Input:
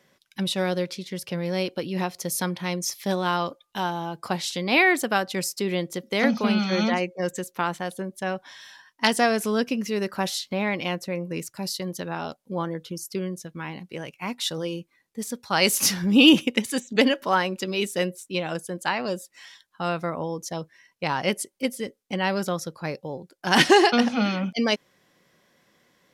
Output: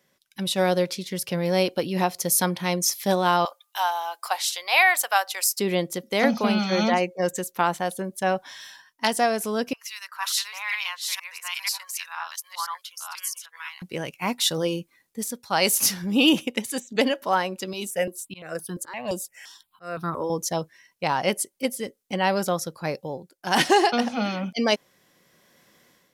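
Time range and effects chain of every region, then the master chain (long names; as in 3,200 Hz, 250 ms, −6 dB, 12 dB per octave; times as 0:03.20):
0:03.45–0:05.58: high-pass filter 730 Hz 24 dB per octave + high-shelf EQ 12,000 Hz +6.5 dB
0:09.73–0:13.82: delay that plays each chunk backwards 489 ms, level −1 dB + elliptic high-pass filter 1,000 Hz, stop band 80 dB + two-band tremolo in antiphase 2.4 Hz, crossover 1,800 Hz
0:17.73–0:20.30: volume swells 275 ms + step-sequenced phaser 5.8 Hz 470–2,100 Hz
whole clip: dynamic equaliser 730 Hz, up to +6 dB, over −36 dBFS, Q 1.3; automatic gain control gain up to 10 dB; high-shelf EQ 7,500 Hz +9.5 dB; level −6.5 dB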